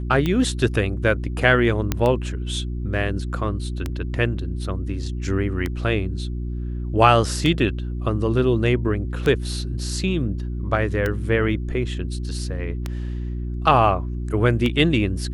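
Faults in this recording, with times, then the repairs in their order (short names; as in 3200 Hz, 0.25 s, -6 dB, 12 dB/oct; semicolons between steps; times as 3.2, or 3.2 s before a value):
hum 60 Hz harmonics 6 -27 dBFS
tick 33 1/3 rpm -11 dBFS
1.92 pop -6 dBFS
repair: de-click; de-hum 60 Hz, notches 6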